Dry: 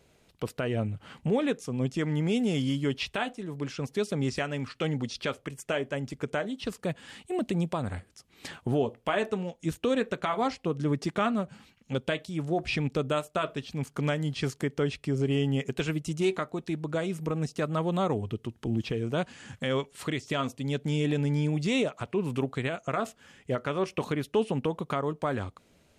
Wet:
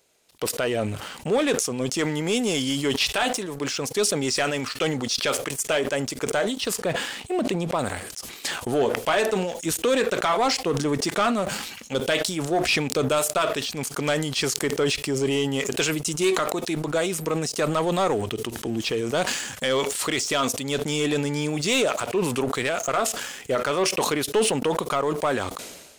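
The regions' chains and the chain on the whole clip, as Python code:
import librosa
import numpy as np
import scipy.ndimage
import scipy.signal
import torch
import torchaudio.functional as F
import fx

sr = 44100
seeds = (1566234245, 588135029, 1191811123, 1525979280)

y = fx.chain(x, sr, fx.lowpass(hz=2800.0, slope=6),
    fx.sustainer(db_per_s=140.0), at=(6.79, 7.79))
y = fx.bass_treble(y, sr, bass_db=-14, treble_db=9)
y = fx.leveller(y, sr, passes=2)
y = fx.sustainer(y, sr, db_per_s=46.0)
y = F.gain(torch.from_numpy(y), 1.0).numpy()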